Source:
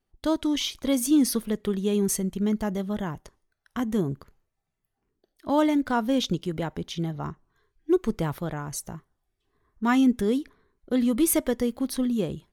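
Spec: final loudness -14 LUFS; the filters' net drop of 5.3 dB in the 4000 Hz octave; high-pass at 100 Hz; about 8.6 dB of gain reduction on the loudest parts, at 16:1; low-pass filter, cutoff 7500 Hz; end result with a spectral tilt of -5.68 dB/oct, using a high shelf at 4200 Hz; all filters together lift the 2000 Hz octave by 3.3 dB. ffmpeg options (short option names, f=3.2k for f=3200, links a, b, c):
-af "highpass=100,lowpass=7.5k,equalizer=f=2k:t=o:g=7,equalizer=f=4k:t=o:g=-5.5,highshelf=f=4.2k:g=-8,acompressor=threshold=-25dB:ratio=16,volume=17.5dB"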